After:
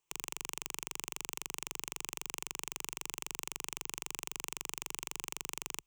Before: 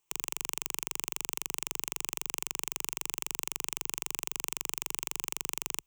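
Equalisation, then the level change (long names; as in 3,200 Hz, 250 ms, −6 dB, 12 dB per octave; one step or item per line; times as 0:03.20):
high-shelf EQ 10,000 Hz −6.5 dB
−2.5 dB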